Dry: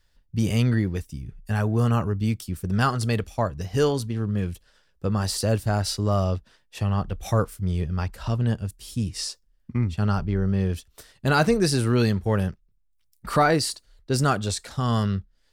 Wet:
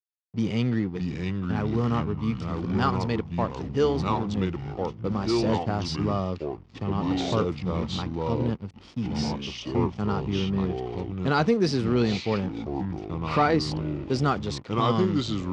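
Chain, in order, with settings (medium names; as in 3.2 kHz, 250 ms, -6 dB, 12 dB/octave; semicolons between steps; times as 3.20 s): band-stop 2.7 kHz; hysteresis with a dead band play -33.5 dBFS; ever faster or slower copies 519 ms, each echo -4 st, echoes 3; cabinet simulation 160–5200 Hz, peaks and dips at 620 Hz -6 dB, 1.6 kHz -7 dB, 4.1 kHz -4 dB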